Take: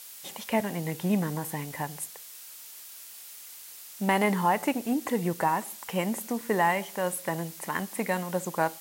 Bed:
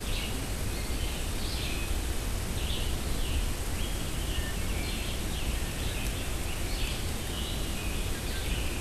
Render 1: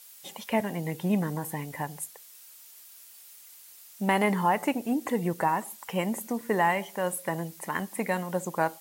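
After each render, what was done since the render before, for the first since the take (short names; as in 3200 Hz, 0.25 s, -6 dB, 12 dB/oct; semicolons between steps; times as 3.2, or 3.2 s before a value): denoiser 7 dB, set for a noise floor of -46 dBFS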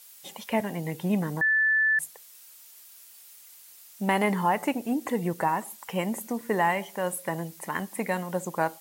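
1.41–1.99 bleep 1750 Hz -19.5 dBFS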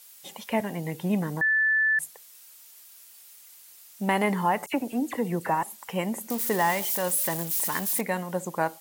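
4.66–5.63 dispersion lows, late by 67 ms, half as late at 2900 Hz; 6.3–8.01 switching spikes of -23.5 dBFS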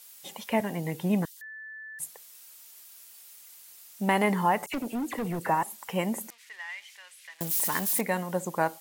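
1.25–2 inverse Chebyshev high-pass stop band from 520 Hz, stop band 80 dB; 4.58–5.39 hard clip -28 dBFS; 6.3–7.41 ladder band-pass 2600 Hz, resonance 40%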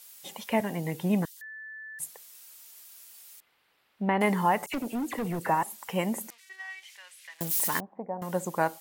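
3.4–4.21 air absorption 440 m; 6.4–6.83 robotiser 379 Hz; 7.8–8.22 ladder low-pass 920 Hz, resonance 50%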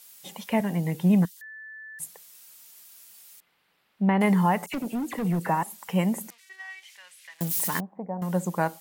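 bell 180 Hz +9 dB 0.5 oct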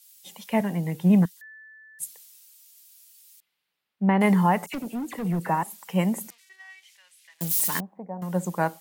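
three-band expander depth 40%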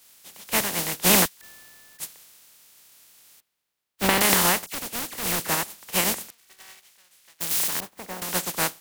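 spectral contrast lowered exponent 0.27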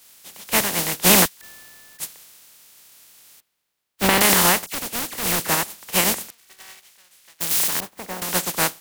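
gain +4 dB; limiter -1 dBFS, peak gain reduction 2.5 dB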